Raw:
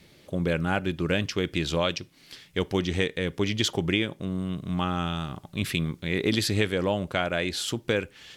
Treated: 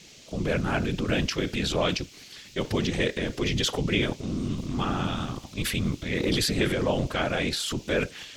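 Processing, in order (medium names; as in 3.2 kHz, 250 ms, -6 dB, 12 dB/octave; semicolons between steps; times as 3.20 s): transient shaper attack -3 dB, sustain +8 dB; whisper effect; band noise 2.3–7 kHz -52 dBFS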